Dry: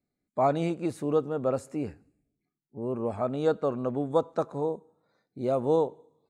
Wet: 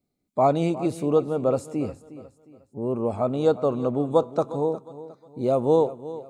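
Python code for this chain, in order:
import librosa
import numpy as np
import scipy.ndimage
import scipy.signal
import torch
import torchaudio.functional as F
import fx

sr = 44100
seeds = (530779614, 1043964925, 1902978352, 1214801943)

y = fx.peak_eq(x, sr, hz=1700.0, db=-11.5, octaves=0.47)
y = fx.echo_feedback(y, sr, ms=359, feedback_pct=35, wet_db=-15.5)
y = y * 10.0 ** (5.0 / 20.0)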